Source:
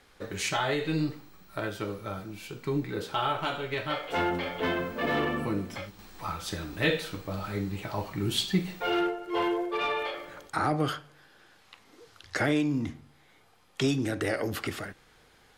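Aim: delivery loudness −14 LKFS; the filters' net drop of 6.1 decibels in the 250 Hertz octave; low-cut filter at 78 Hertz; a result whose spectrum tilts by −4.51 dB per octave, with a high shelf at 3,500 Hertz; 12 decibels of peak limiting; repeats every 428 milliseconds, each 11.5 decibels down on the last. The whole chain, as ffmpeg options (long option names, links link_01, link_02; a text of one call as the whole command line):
ffmpeg -i in.wav -af "highpass=78,equalizer=frequency=250:width_type=o:gain=-9,highshelf=frequency=3500:gain=5,alimiter=limit=-23.5dB:level=0:latency=1,aecho=1:1:428|856|1284:0.266|0.0718|0.0194,volume=20.5dB" out.wav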